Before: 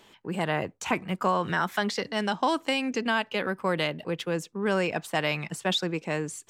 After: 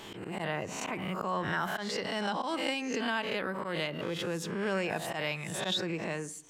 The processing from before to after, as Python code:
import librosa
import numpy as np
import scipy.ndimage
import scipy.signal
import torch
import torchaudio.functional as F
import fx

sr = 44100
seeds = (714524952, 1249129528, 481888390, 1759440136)

y = fx.spec_swells(x, sr, rise_s=0.45)
y = fx.rev_fdn(y, sr, rt60_s=0.66, lf_ratio=1.55, hf_ratio=0.45, size_ms=51.0, drr_db=16.0)
y = fx.auto_swell(y, sr, attack_ms=119.0)
y = fx.pre_swell(y, sr, db_per_s=33.0)
y = F.gain(torch.from_numpy(y), -7.0).numpy()